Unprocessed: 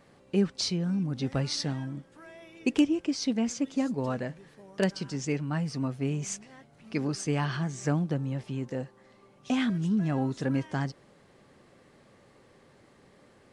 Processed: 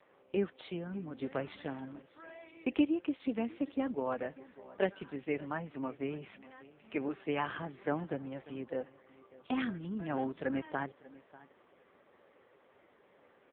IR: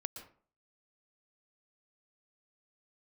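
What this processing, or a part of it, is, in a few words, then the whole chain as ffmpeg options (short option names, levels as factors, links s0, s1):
satellite phone: -af "highpass=360,lowpass=3200,aecho=1:1:592:0.1" -ar 8000 -c:a libopencore_amrnb -b:a 5900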